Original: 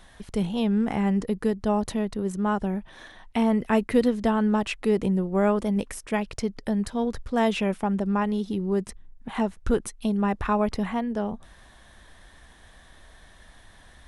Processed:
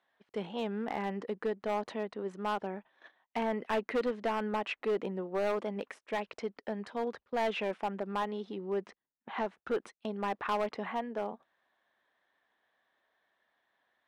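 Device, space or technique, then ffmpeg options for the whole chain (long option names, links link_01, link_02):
walkie-talkie: -filter_complex "[0:a]highpass=410,lowpass=2800,asoftclip=type=hard:threshold=-23dB,agate=range=-17dB:threshold=-45dB:ratio=16:detection=peak,asettb=1/sr,asplit=3[link_01][link_02][link_03];[link_01]atrim=end=8.844[link_04];[link_02]atrim=start=8.84:end=9.46,asetpts=PTS-STARTPTS,afade=type=in:duration=0.004:curve=qsin,afade=type=out:start_time=0.616:duration=0.004:curve=qsin,lowpass=frequency=6900:width=0.5412,lowpass=frequency=6900:width=1.3066[link_05];[link_03]atrim=start=9.456[link_06];[link_04][link_05]acrossfade=duration=0.004:curve1=hsin:curve2=qsin[link_07];[link_07][link_06]acrossfade=duration=0.004:curve1=qsin:curve2=hsin,volume=-3dB"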